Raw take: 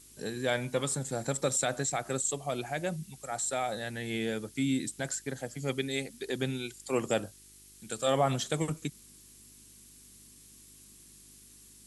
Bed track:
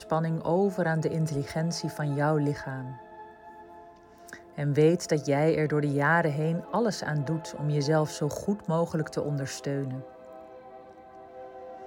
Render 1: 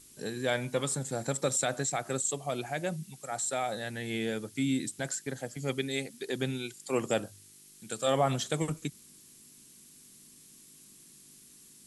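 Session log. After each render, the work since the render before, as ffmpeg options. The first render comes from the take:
ffmpeg -i in.wav -af "bandreject=frequency=50:width_type=h:width=4,bandreject=frequency=100:width_type=h:width=4" out.wav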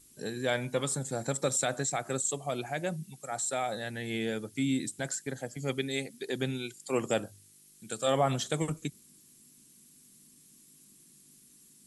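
ffmpeg -i in.wav -af "afftdn=noise_reduction=6:noise_floor=-56" out.wav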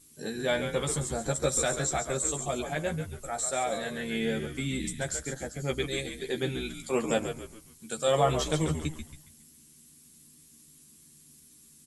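ffmpeg -i in.wav -filter_complex "[0:a]asplit=2[link_01][link_02];[link_02]adelay=13,volume=-3.5dB[link_03];[link_01][link_03]amix=inputs=2:normalize=0,asplit=2[link_04][link_05];[link_05]asplit=5[link_06][link_07][link_08][link_09][link_10];[link_06]adelay=138,afreqshift=-76,volume=-8dB[link_11];[link_07]adelay=276,afreqshift=-152,volume=-16dB[link_12];[link_08]adelay=414,afreqshift=-228,volume=-23.9dB[link_13];[link_09]adelay=552,afreqshift=-304,volume=-31.9dB[link_14];[link_10]adelay=690,afreqshift=-380,volume=-39.8dB[link_15];[link_11][link_12][link_13][link_14][link_15]amix=inputs=5:normalize=0[link_16];[link_04][link_16]amix=inputs=2:normalize=0" out.wav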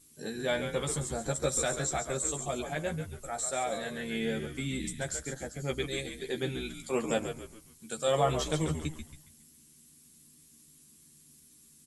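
ffmpeg -i in.wav -af "volume=-2.5dB" out.wav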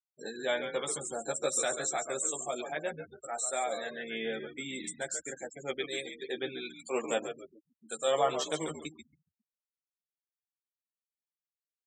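ffmpeg -i in.wav -af "afftfilt=real='re*gte(hypot(re,im),0.00891)':imag='im*gte(hypot(re,im),0.00891)':win_size=1024:overlap=0.75,highpass=350" out.wav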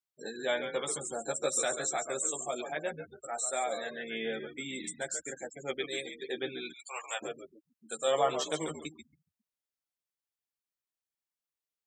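ffmpeg -i in.wav -filter_complex "[0:a]asplit=3[link_01][link_02][link_03];[link_01]afade=type=out:start_time=6.72:duration=0.02[link_04];[link_02]highpass=frequency=800:width=0.5412,highpass=frequency=800:width=1.3066,afade=type=in:start_time=6.72:duration=0.02,afade=type=out:start_time=7.21:duration=0.02[link_05];[link_03]afade=type=in:start_time=7.21:duration=0.02[link_06];[link_04][link_05][link_06]amix=inputs=3:normalize=0" out.wav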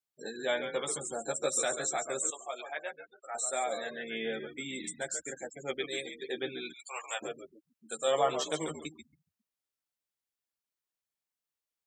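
ffmpeg -i in.wav -filter_complex "[0:a]asettb=1/sr,asplit=3[link_01][link_02][link_03];[link_01]atrim=end=2.304[link_04];[link_02]atrim=start=2.3:end=3.35,asetpts=PTS-STARTPTS,afade=type=in:duration=0.004:curve=qsin,afade=type=out:start_time=1.046:duration=0.004:curve=qsin,highpass=710,lowpass=4200[link_05];[link_03]atrim=start=3.346[link_06];[link_04][link_05]acrossfade=duration=0.004:curve1=hsin:curve2=qsin[link_07];[link_07][link_06]acrossfade=duration=0.004:curve1=qsin:curve2=hsin" out.wav

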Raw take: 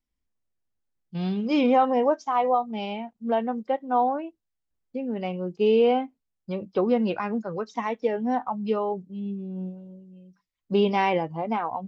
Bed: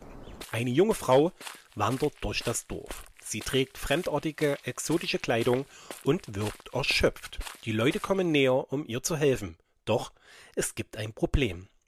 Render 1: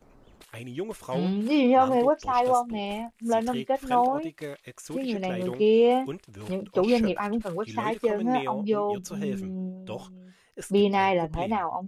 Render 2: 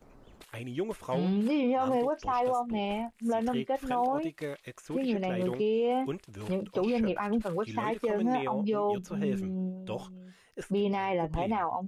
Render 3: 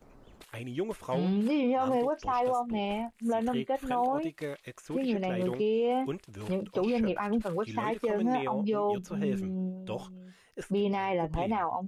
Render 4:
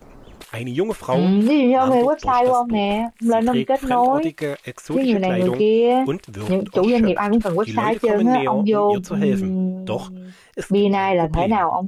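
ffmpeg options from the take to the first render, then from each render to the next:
ffmpeg -i in.wav -i bed.wav -filter_complex "[1:a]volume=-10dB[link_01];[0:a][link_01]amix=inputs=2:normalize=0" out.wav
ffmpeg -i in.wav -filter_complex "[0:a]acrossover=split=3100[link_01][link_02];[link_01]alimiter=limit=-21dB:level=0:latency=1:release=57[link_03];[link_02]acompressor=threshold=-54dB:ratio=6[link_04];[link_03][link_04]amix=inputs=2:normalize=0" out.wav
ffmpeg -i in.wav -filter_complex "[0:a]asettb=1/sr,asplit=3[link_01][link_02][link_03];[link_01]atrim=end=3.244[link_04];[link_02]atrim=start=3.24:end=4.21,asetpts=PTS-STARTPTS,afade=type=in:duration=0.004:curve=qsin,afade=type=out:start_time=0.966:duration=0.004:curve=qsin,asuperstop=centerf=5300:order=4:qfactor=5.2[link_05];[link_03]atrim=start=4.206[link_06];[link_04][link_05]acrossfade=duration=0.004:curve1=hsin:curve2=qsin[link_07];[link_07][link_06]acrossfade=duration=0.004:curve1=qsin:curve2=hsin" out.wav
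ffmpeg -i in.wav -af "volume=12dB" out.wav

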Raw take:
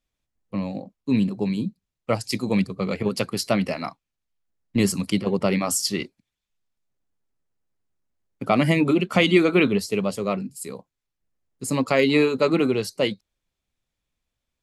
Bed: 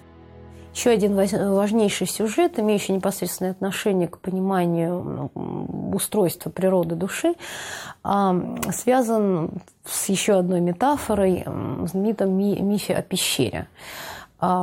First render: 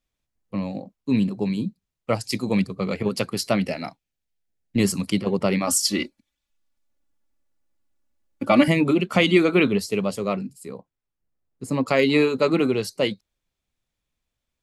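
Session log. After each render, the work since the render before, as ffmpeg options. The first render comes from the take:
ffmpeg -i in.wav -filter_complex "[0:a]asettb=1/sr,asplit=3[link_01][link_02][link_03];[link_01]atrim=end=3.604[link_04];[link_02]atrim=start=3.6:end=4.8,asetpts=PTS-STARTPTS,afade=type=in:duration=0.004:curve=qsin,afade=type=out:start_time=1.196:duration=0.004:curve=qsin,equalizer=frequency=1100:width=4.1:gain=-12.5[link_05];[link_03]atrim=start=4.796[link_06];[link_04][link_05]acrossfade=duration=0.004:curve1=hsin:curve2=qsin[link_07];[link_07][link_06]acrossfade=duration=0.004:curve1=qsin:curve2=hsin,asettb=1/sr,asplit=3[link_08][link_09][link_10];[link_08]atrim=end=5.674[link_11];[link_09]atrim=start=5.67:end=8.68,asetpts=PTS-STARTPTS,afade=type=in:duration=0.004:curve=qsin,afade=type=out:start_time=3.006:duration=0.004:curve=qsin,aecho=1:1:3.5:0.96,atrim=end_sample=132741[link_12];[link_10]atrim=start=8.676[link_13];[link_11][link_12]acrossfade=duration=0.004:curve1=hsin:curve2=qsin[link_14];[link_14][link_13]acrossfade=duration=0.004:curve1=qsin:curve2=hsin,asettb=1/sr,asplit=3[link_15][link_16][link_17];[link_15]atrim=end=10.534[link_18];[link_16]atrim=start=10.53:end=11.86,asetpts=PTS-STARTPTS,afade=type=in:duration=0.004:curve=qsin,afade=type=out:start_time=1.326:duration=0.004:curve=qsin,highshelf=frequency=2600:gain=-11[link_19];[link_17]atrim=start=11.856[link_20];[link_18][link_19]acrossfade=duration=0.004:curve1=hsin:curve2=qsin[link_21];[link_21][link_20]acrossfade=duration=0.004:curve1=qsin:curve2=hsin" out.wav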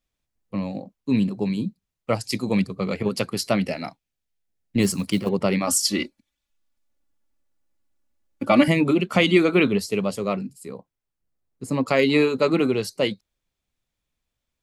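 ffmpeg -i in.wav -filter_complex "[0:a]asettb=1/sr,asplit=3[link_01][link_02][link_03];[link_01]atrim=end=4.824[link_04];[link_02]atrim=start=4.82:end=5.29,asetpts=PTS-STARTPTS,afade=type=in:duration=0.004:curve=qsin,afade=type=out:start_time=0.466:duration=0.004:curve=qsin,acrusher=bits=7:mode=log:mix=0:aa=0.000001[link_05];[link_03]atrim=start=5.286[link_06];[link_04][link_05]acrossfade=duration=0.004:curve1=hsin:curve2=qsin[link_07];[link_07][link_06]acrossfade=duration=0.004:curve1=qsin:curve2=hsin" out.wav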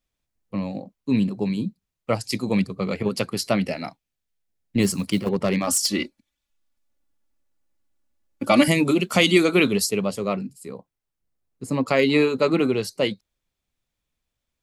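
ffmpeg -i in.wav -filter_complex "[0:a]asettb=1/sr,asplit=3[link_01][link_02][link_03];[link_01]atrim=end=5.184[link_04];[link_02]atrim=start=5.18:end=5.97,asetpts=PTS-STARTPTS,afade=type=in:duration=0.004:curve=qsin,afade=type=out:start_time=0.786:duration=0.004:curve=qsin,asoftclip=type=hard:threshold=-14.5dB[link_05];[link_03]atrim=start=5.966[link_06];[link_04][link_05]acrossfade=duration=0.004:curve1=hsin:curve2=qsin[link_07];[link_07][link_06]acrossfade=duration=0.004:curve1=qsin:curve2=hsin,asplit=3[link_08][link_09][link_10];[link_08]afade=type=out:start_time=8.43:duration=0.02[link_11];[link_09]bass=frequency=250:gain=-1,treble=frequency=4000:gain=12,afade=type=in:start_time=8.43:duration=0.02,afade=type=out:start_time=9.89:duration=0.02[link_12];[link_10]afade=type=in:start_time=9.89:duration=0.02[link_13];[link_11][link_12][link_13]amix=inputs=3:normalize=0" out.wav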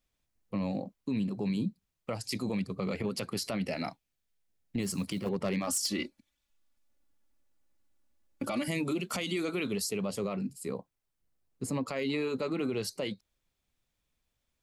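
ffmpeg -i in.wav -af "acompressor=threshold=-26dB:ratio=12,alimiter=limit=-24dB:level=0:latency=1:release=19" out.wav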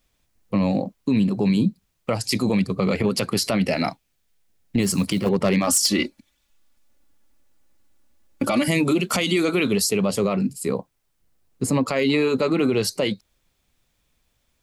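ffmpeg -i in.wav -af "volume=12dB" out.wav

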